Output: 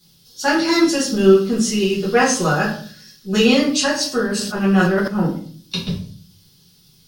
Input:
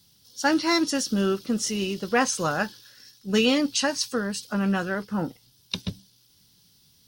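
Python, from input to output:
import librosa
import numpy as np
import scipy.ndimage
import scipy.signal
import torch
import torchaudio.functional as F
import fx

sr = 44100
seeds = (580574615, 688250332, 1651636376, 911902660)

y = fx.room_shoebox(x, sr, seeds[0], volume_m3=47.0, walls='mixed', distance_m=1.4)
y = fx.sustainer(y, sr, db_per_s=40.0, at=(4.31, 5.08))
y = y * 10.0 ** (-1.0 / 20.0)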